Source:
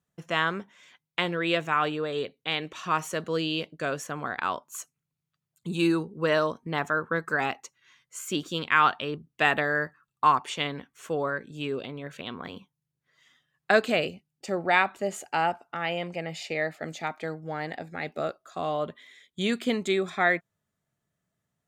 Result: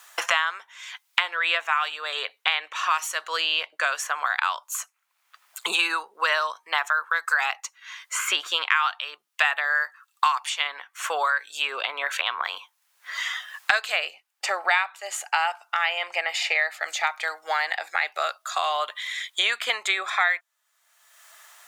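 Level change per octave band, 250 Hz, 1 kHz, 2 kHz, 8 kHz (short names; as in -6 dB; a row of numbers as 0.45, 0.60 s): under -20 dB, +2.5 dB, +6.0 dB, +9.5 dB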